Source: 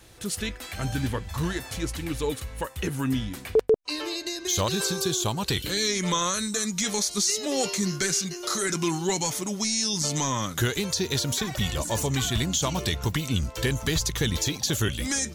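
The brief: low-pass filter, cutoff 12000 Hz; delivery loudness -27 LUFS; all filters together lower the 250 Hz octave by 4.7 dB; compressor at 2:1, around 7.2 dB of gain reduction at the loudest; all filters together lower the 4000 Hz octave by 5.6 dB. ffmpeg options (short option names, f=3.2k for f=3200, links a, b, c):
-af "lowpass=12k,equalizer=f=250:t=o:g=-7,equalizer=f=4k:t=o:g=-7,acompressor=threshold=-31dB:ratio=2,volume=5.5dB"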